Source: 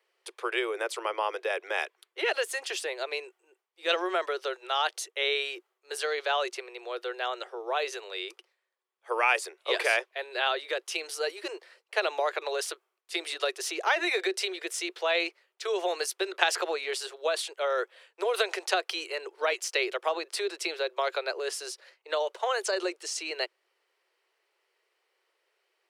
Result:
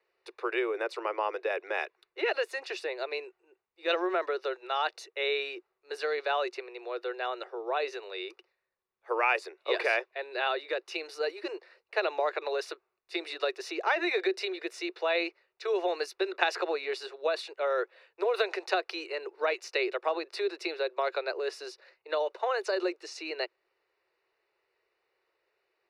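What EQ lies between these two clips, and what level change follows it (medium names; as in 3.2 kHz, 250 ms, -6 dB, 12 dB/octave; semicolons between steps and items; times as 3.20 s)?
Butterworth band-stop 3.2 kHz, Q 6.8; distance through air 340 m; tone controls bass +13 dB, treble +12 dB; 0.0 dB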